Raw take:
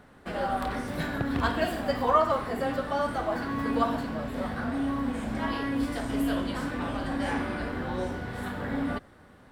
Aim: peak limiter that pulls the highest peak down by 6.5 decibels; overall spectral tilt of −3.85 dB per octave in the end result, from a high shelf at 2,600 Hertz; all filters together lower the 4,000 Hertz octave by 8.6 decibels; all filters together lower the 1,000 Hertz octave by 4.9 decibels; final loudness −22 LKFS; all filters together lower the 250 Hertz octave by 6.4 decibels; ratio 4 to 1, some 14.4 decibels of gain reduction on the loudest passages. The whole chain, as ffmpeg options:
ffmpeg -i in.wav -af "equalizer=frequency=250:width_type=o:gain=-7,equalizer=frequency=1000:width_type=o:gain=-4.5,highshelf=frequency=2600:gain=-7.5,equalizer=frequency=4000:width_type=o:gain=-5,acompressor=threshold=-39dB:ratio=4,volume=21.5dB,alimiter=limit=-12dB:level=0:latency=1" out.wav

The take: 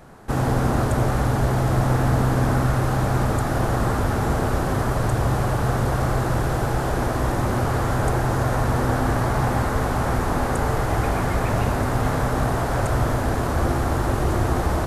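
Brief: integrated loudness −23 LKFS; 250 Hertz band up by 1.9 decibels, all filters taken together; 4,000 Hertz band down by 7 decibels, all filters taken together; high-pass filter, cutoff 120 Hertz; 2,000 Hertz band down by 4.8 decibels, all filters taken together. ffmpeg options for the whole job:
ffmpeg -i in.wav -af "highpass=120,equalizer=frequency=250:width_type=o:gain=3,equalizer=frequency=2000:width_type=o:gain=-5.5,equalizer=frequency=4000:width_type=o:gain=-7.5,volume=0.5dB" out.wav

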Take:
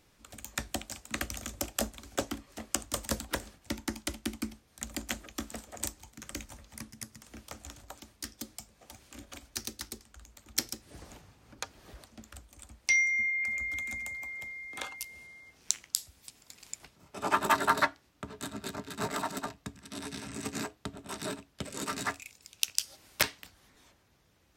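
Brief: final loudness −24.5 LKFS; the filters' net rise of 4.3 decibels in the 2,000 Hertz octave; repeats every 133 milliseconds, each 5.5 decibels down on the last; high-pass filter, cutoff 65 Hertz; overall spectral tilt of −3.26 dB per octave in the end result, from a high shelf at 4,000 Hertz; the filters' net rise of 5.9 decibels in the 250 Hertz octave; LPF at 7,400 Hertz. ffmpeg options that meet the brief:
ffmpeg -i in.wav -af "highpass=65,lowpass=7400,equalizer=frequency=250:width_type=o:gain=7,equalizer=frequency=2000:width_type=o:gain=6,highshelf=frequency=4000:gain=-6.5,aecho=1:1:133|266|399|532|665|798|931:0.531|0.281|0.149|0.079|0.0419|0.0222|0.0118,volume=5dB" out.wav

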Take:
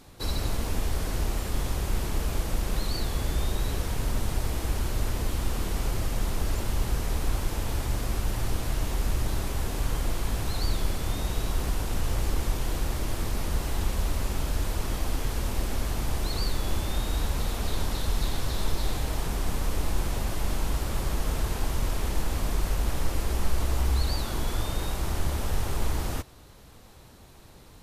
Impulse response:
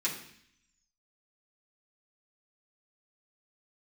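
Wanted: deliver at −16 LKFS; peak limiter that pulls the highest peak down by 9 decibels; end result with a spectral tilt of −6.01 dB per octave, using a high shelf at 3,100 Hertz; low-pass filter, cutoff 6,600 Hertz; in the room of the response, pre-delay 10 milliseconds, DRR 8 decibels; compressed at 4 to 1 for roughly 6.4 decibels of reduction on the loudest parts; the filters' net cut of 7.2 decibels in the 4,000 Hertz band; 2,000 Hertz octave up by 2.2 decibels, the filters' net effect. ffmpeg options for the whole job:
-filter_complex "[0:a]lowpass=6600,equalizer=frequency=2000:width_type=o:gain=6,highshelf=frequency=3100:gain=-4.5,equalizer=frequency=4000:width_type=o:gain=-7,acompressor=threshold=-25dB:ratio=4,alimiter=level_in=3dB:limit=-24dB:level=0:latency=1,volume=-3dB,asplit=2[link_01][link_02];[1:a]atrim=start_sample=2205,adelay=10[link_03];[link_02][link_03]afir=irnorm=-1:irlink=0,volume=-14dB[link_04];[link_01][link_04]amix=inputs=2:normalize=0,volume=22dB"

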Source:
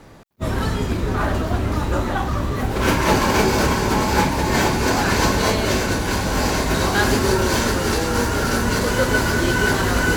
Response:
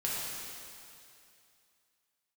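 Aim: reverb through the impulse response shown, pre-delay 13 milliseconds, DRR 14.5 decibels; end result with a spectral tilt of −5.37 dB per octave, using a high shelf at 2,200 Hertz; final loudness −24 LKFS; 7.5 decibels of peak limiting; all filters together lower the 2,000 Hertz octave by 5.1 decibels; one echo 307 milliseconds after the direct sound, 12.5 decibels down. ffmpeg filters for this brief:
-filter_complex "[0:a]equalizer=frequency=2000:width_type=o:gain=-4,highshelf=frequency=2200:gain=-6.5,alimiter=limit=-13dB:level=0:latency=1,aecho=1:1:307:0.237,asplit=2[link_01][link_02];[1:a]atrim=start_sample=2205,adelay=13[link_03];[link_02][link_03]afir=irnorm=-1:irlink=0,volume=-20.5dB[link_04];[link_01][link_04]amix=inputs=2:normalize=0,volume=-1dB"

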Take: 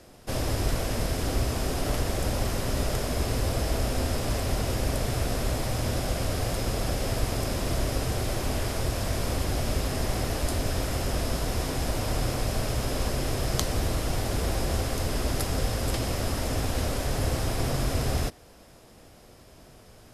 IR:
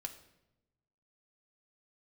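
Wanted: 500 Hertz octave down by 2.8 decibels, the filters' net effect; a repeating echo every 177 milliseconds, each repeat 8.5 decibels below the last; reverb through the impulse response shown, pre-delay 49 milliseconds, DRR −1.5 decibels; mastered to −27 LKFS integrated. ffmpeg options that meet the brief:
-filter_complex "[0:a]equalizer=frequency=500:width_type=o:gain=-3.5,aecho=1:1:177|354|531|708:0.376|0.143|0.0543|0.0206,asplit=2[link_01][link_02];[1:a]atrim=start_sample=2205,adelay=49[link_03];[link_02][link_03]afir=irnorm=-1:irlink=0,volume=4dB[link_04];[link_01][link_04]amix=inputs=2:normalize=0,volume=-2dB"

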